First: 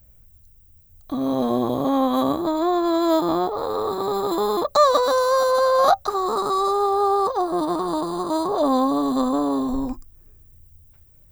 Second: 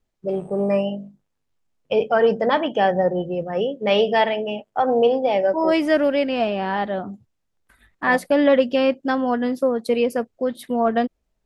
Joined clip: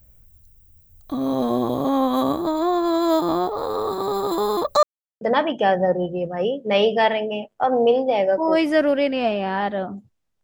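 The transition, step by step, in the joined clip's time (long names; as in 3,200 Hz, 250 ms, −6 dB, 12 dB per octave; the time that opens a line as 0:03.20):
first
0:04.83–0:05.21: silence
0:05.21: continue with second from 0:02.37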